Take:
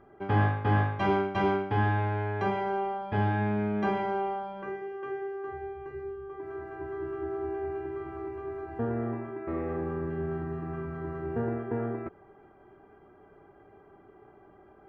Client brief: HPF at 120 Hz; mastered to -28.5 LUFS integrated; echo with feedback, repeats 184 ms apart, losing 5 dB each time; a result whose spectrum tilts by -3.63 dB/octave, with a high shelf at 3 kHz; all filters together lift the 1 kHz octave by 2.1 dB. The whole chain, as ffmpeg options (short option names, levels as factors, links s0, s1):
-af "highpass=120,equalizer=f=1000:t=o:g=3.5,highshelf=f=3000:g=-7,aecho=1:1:184|368|552|736|920|1104|1288:0.562|0.315|0.176|0.0988|0.0553|0.031|0.0173,volume=1.26"